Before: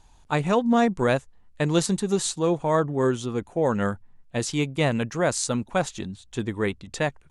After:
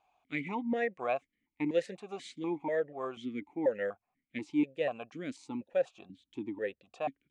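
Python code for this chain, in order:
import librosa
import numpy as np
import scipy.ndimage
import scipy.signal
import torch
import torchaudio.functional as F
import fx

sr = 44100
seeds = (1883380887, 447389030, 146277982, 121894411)

y = fx.peak_eq(x, sr, hz=2100.0, db=fx.steps((0.0, 12.0), (4.41, -3.0)), octaves=0.33)
y = fx.vowel_held(y, sr, hz=4.1)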